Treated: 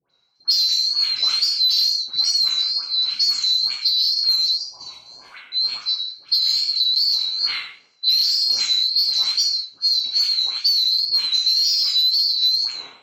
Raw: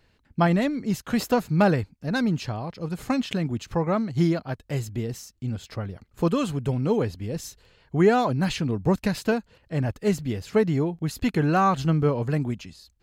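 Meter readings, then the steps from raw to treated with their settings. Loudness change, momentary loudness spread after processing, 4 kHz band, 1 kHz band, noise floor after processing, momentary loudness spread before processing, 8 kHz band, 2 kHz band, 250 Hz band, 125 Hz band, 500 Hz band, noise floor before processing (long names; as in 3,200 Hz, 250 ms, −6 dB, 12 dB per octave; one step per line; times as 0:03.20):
+8.5 dB, 7 LU, +26.5 dB, below −15 dB, −54 dBFS, 12 LU, +10.5 dB, −4.0 dB, below −35 dB, below −35 dB, below −30 dB, −65 dBFS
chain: neighbouring bands swapped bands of 4,000 Hz
reverb whose tail is shaped and stops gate 230 ms falling, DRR −2.5 dB
gain on a spectral selection 0:04.48–0:05.28, 1,100–4,500 Hz −16 dB
spectral tilt +2 dB per octave
low-pass that shuts in the quiet parts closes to 1,400 Hz, open at −9 dBFS
soft clipping −9 dBFS, distortion −14 dB
downward compressor 6 to 1, threshold −26 dBFS, peak gain reduction 13.5 dB
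parametric band 2,900 Hz +10.5 dB 2.4 octaves
all-pass dispersion highs, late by 105 ms, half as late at 1,300 Hz
tape wow and flutter 64 cents
on a send: bucket-brigade delay 81 ms, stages 2,048, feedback 40%, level −18 dB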